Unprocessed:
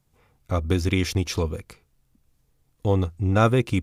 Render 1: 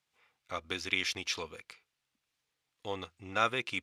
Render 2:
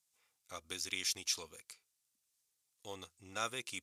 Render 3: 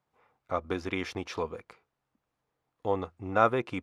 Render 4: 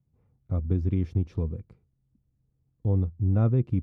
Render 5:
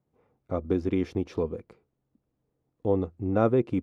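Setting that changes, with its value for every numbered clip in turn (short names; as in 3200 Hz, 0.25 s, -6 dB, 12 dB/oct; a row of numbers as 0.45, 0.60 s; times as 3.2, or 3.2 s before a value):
band-pass, frequency: 2800, 7800, 990, 120, 380 Hz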